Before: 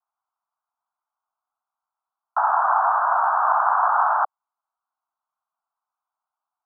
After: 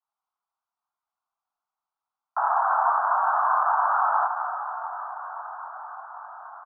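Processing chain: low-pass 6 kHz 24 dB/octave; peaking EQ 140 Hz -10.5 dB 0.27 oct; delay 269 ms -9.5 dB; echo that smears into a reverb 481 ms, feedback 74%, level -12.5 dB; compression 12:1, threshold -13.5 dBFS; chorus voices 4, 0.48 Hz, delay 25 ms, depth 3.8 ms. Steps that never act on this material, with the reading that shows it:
low-pass 6 kHz: input has nothing above 1.8 kHz; peaking EQ 140 Hz: input has nothing below 540 Hz

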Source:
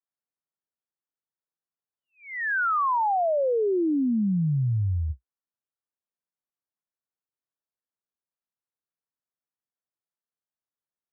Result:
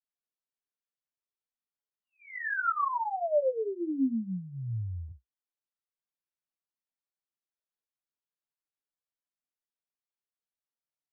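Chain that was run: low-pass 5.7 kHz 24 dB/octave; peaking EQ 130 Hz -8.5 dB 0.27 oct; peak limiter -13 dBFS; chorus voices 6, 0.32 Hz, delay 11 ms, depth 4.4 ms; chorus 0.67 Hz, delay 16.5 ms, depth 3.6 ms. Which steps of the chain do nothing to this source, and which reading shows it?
low-pass 5.7 kHz: input has nothing above 2 kHz; peak limiter -13 dBFS: peak at its input -20.5 dBFS

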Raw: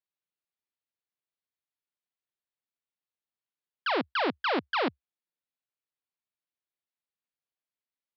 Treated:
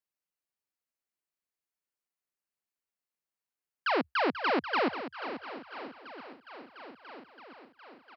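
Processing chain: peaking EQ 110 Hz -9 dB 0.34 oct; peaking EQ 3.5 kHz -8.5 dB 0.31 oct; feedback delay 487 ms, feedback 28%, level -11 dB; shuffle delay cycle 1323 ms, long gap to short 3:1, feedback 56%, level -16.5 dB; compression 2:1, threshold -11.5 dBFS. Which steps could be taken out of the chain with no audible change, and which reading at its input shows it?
compression, threshold -11.5 dBFS: peak at its input -18.0 dBFS

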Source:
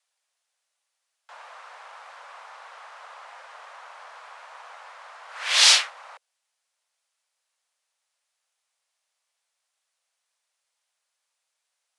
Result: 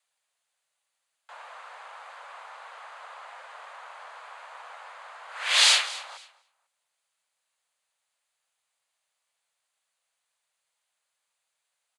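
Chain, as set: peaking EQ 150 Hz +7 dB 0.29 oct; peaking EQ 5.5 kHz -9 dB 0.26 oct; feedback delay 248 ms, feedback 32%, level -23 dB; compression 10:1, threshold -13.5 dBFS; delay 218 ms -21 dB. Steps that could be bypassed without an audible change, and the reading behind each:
peaking EQ 150 Hz: input has nothing below 400 Hz

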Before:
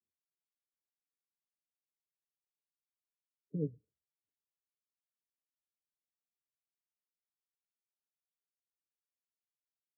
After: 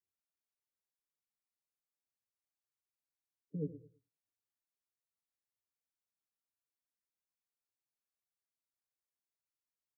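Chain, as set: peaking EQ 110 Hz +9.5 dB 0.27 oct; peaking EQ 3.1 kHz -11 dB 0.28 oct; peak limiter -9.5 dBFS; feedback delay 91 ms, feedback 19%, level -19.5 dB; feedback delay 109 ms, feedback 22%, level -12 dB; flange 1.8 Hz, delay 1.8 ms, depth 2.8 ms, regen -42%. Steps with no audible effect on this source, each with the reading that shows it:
peaking EQ 3.1 kHz: input has nothing above 540 Hz; peak limiter -9.5 dBFS: peak at its input -24.0 dBFS

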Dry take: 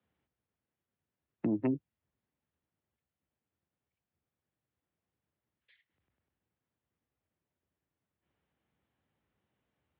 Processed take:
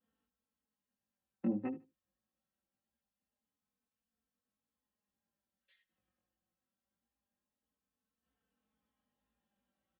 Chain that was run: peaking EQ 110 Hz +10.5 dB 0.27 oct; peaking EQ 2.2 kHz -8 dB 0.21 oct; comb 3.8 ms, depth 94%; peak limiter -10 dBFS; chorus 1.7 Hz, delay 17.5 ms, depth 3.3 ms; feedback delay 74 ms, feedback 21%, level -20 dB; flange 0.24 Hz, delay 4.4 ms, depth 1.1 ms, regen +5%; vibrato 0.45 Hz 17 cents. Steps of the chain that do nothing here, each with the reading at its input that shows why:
peak limiter -10 dBFS: peak at its input -17.5 dBFS

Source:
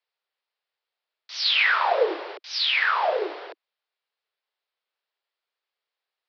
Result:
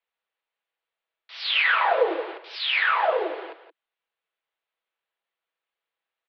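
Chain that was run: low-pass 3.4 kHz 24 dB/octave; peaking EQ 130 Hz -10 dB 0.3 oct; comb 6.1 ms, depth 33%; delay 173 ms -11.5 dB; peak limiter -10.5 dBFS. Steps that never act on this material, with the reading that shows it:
peaking EQ 130 Hz: input has nothing below 290 Hz

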